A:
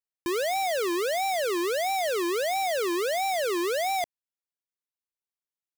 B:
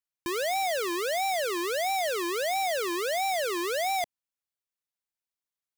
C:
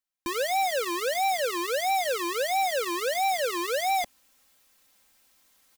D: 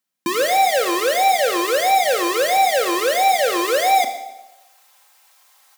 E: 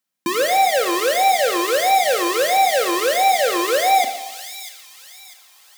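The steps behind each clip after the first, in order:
parametric band 380 Hz −4.5 dB 1.1 octaves
comb filter 3.8 ms, depth 64%; reversed playback; upward compression, threshold −41 dBFS; reversed playback
delay with a band-pass on its return 129 ms, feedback 36%, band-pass 480 Hz, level −14 dB; high-pass filter sweep 170 Hz → 800 Hz, 0:03.60–0:04.82; four-comb reverb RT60 0.85 s, combs from 27 ms, DRR 7.5 dB; level +8 dB
delay with a high-pass on its return 646 ms, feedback 38%, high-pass 3,400 Hz, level −7 dB

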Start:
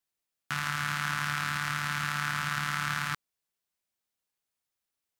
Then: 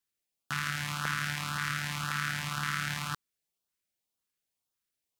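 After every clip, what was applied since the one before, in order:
auto-filter notch saw up 1.9 Hz 580–2,300 Hz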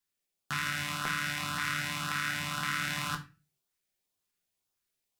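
speech leveller
on a send at −2.5 dB: convolution reverb RT60 0.30 s, pre-delay 5 ms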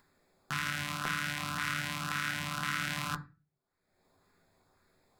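adaptive Wiener filter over 15 samples
upward compression, threshold −49 dBFS

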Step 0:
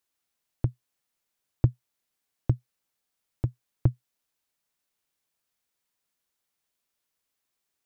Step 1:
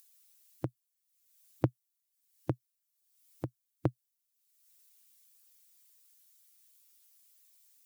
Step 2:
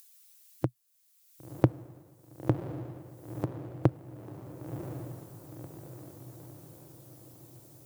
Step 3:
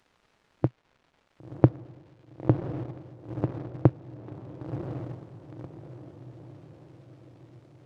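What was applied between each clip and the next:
spectral dynamics exaggerated over time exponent 1.5; high-pass filter 260 Hz 12 dB per octave; upward compression, threshold −53 dBFS; level +5 dB
feedback delay with all-pass diffusion 1,029 ms, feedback 54%, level −8.5 dB; level +6 dB
surface crackle 530 per second −48 dBFS; in parallel at −10 dB: bit reduction 6 bits; on the sum: head-to-tape spacing loss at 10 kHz 30 dB; level +3 dB

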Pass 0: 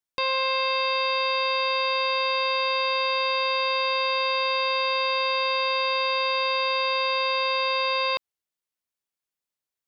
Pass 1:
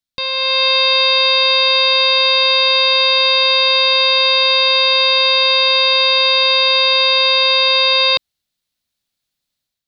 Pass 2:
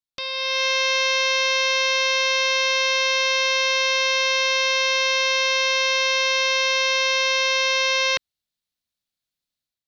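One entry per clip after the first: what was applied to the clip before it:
low-shelf EQ 490 Hz +9 dB; automatic gain control gain up to 9 dB; graphic EQ with 15 bands 400 Hz −9 dB, 1,000 Hz −5 dB, 4,000 Hz +10 dB
highs frequency-modulated by the lows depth 0.45 ms; level −8.5 dB

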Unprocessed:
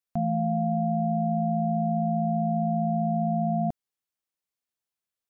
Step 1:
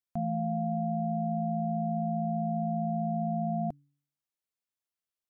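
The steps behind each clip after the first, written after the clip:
hum removal 143.4 Hz, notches 2
level −5 dB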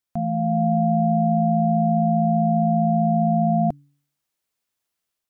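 automatic gain control gain up to 5 dB
level +6.5 dB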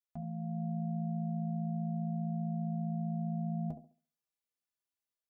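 stiff-string resonator 73 Hz, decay 0.25 s, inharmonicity 0.03
delay with a band-pass on its return 69 ms, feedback 30%, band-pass 400 Hz, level −7.5 dB
level −7.5 dB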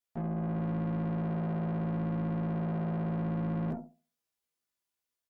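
double-tracking delay 17 ms −2 dB
tube saturation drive 42 dB, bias 0.8
dynamic equaliser 260 Hz, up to +6 dB, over −57 dBFS, Q 0.81
level +7.5 dB

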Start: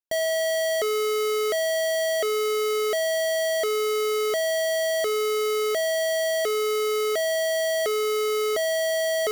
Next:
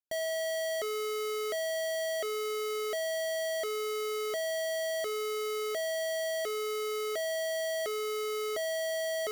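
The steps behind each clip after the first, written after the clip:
notch filter 460 Hz, Q 12
level −8.5 dB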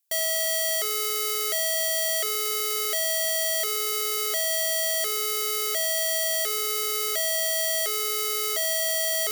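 spectral tilt +4.5 dB per octave
in parallel at −3 dB: asymmetric clip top −26.5 dBFS, bottom −18.5 dBFS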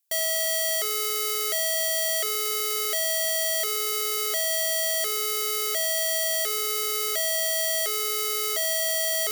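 no processing that can be heard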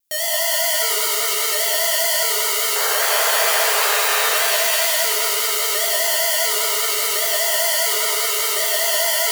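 pitch vibrato 5 Hz 97 cents
sound drawn into the spectrogram noise, 0:02.75–0:04.35, 390–1,900 Hz −30 dBFS
reverb with rising layers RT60 2.3 s, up +7 semitones, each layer −2 dB, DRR −2.5 dB
level +1.5 dB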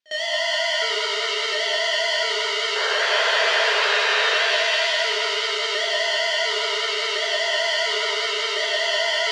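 in parallel at −5 dB: hard clipping −11.5 dBFS, distortion −17 dB
on the sum: loudspeaker in its box 290–4,300 Hz, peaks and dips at 310 Hz −5 dB, 520 Hz −3 dB, 790 Hz −10 dB, 1,200 Hz −8 dB, 2,300 Hz −4 dB, 4,200 Hz −3 dB
backwards echo 54 ms −23.5 dB

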